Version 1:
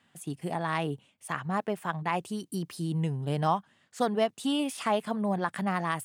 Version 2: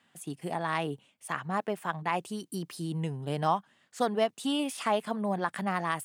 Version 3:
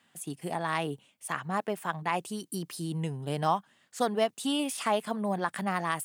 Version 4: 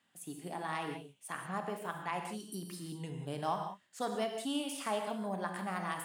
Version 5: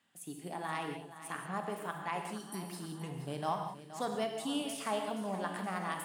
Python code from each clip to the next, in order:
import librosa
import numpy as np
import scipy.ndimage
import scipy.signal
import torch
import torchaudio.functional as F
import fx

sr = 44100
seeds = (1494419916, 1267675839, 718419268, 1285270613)

y1 = fx.highpass(x, sr, hz=190.0, slope=6)
y2 = fx.high_shelf(y1, sr, hz=5900.0, db=6.0)
y3 = fx.rev_gated(y2, sr, seeds[0], gate_ms=210, shape='flat', drr_db=3.5)
y3 = y3 * 10.0 ** (-8.5 / 20.0)
y4 = fx.echo_feedback(y3, sr, ms=473, feedback_pct=59, wet_db=-13.0)